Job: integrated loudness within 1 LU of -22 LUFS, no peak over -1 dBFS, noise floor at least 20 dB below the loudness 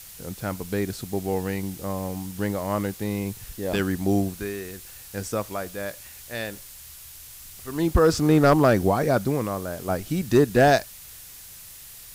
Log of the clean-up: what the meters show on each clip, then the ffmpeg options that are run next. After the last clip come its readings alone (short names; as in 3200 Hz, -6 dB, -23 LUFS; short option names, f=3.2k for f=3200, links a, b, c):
noise floor -44 dBFS; noise floor target -45 dBFS; loudness -24.5 LUFS; peak -8.5 dBFS; loudness target -22.0 LUFS
-> -af "afftdn=nr=6:nf=-44"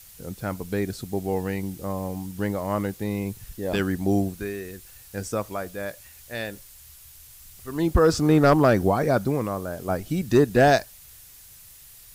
noise floor -48 dBFS; loudness -24.5 LUFS; peak -8.5 dBFS; loudness target -22.0 LUFS
-> -af "volume=2.5dB"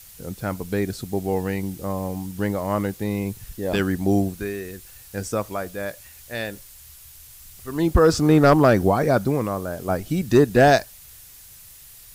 loudness -22.0 LUFS; peak -6.0 dBFS; noise floor -46 dBFS